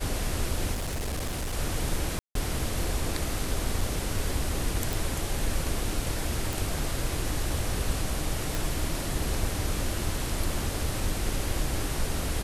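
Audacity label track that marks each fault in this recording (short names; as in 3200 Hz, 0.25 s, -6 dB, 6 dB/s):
0.730000	1.540000	clipped -27.5 dBFS
2.190000	2.350000	gap 0.163 s
3.810000	3.810000	gap 2.4 ms
4.930000	4.930000	pop
6.530000	6.530000	pop
8.550000	8.550000	pop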